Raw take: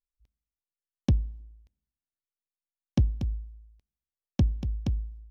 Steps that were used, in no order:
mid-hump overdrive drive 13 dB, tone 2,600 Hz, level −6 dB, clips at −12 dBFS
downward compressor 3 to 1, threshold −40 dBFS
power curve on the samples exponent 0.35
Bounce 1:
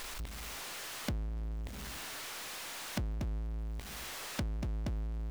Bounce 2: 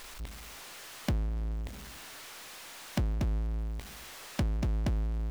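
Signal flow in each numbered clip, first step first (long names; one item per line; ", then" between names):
mid-hump overdrive, then power curve on the samples, then downward compressor
downward compressor, then mid-hump overdrive, then power curve on the samples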